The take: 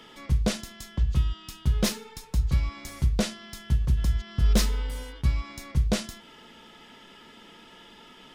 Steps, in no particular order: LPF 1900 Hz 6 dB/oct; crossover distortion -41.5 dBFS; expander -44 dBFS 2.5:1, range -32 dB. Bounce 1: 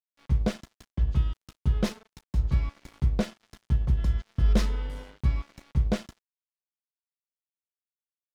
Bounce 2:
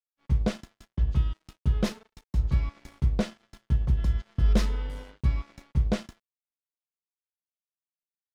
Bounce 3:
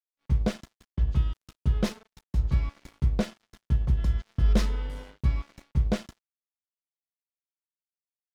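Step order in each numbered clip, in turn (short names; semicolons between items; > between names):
expander > LPF > crossover distortion; crossover distortion > expander > LPF; LPF > crossover distortion > expander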